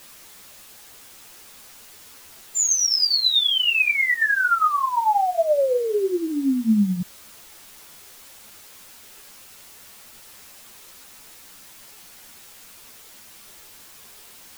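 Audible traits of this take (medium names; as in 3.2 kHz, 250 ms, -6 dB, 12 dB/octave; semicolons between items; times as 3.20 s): tremolo triangle 9.3 Hz, depth 55%; a quantiser's noise floor 8-bit, dither triangular; a shimmering, thickened sound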